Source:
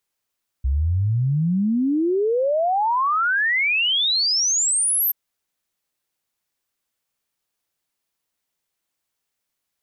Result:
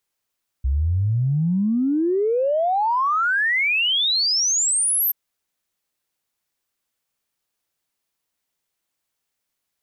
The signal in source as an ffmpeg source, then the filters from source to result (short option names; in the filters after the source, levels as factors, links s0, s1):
-f lavfi -i "aevalsrc='0.141*clip(min(t,4.48-t)/0.01,0,1)*sin(2*PI*63*4.48/log(13000/63)*(exp(log(13000/63)*t/4.48)-1))':d=4.48:s=44100"
-af "aeval=exprs='0.15*(cos(1*acos(clip(val(0)/0.15,-1,1)))-cos(1*PI/2))+0.00133*(cos(5*acos(clip(val(0)/0.15,-1,1)))-cos(5*PI/2))':c=same"